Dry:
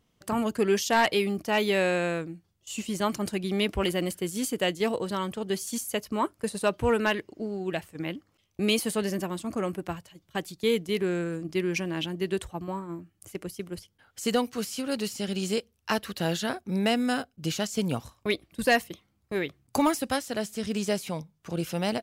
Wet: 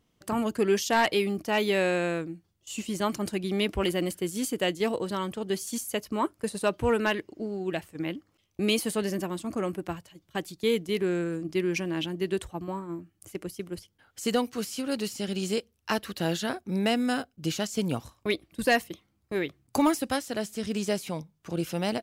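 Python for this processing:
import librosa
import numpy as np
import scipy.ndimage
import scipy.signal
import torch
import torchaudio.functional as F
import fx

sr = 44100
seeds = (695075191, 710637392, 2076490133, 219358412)

y = fx.peak_eq(x, sr, hz=320.0, db=3.5, octaves=0.42)
y = y * 10.0 ** (-1.0 / 20.0)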